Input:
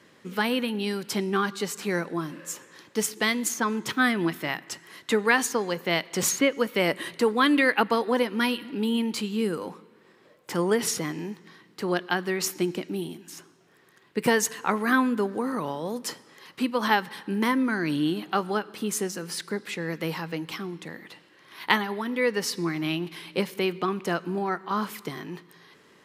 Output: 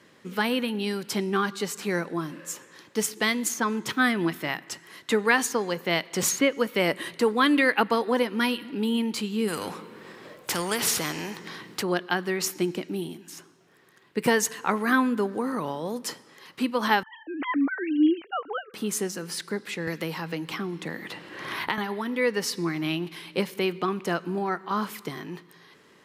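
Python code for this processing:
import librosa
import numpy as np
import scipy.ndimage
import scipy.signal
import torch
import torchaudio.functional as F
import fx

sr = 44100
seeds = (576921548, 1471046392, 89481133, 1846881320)

y = fx.spectral_comp(x, sr, ratio=2.0, at=(9.47, 11.81), fade=0.02)
y = fx.sine_speech(y, sr, at=(17.03, 18.74))
y = fx.band_squash(y, sr, depth_pct=100, at=(19.87, 21.78))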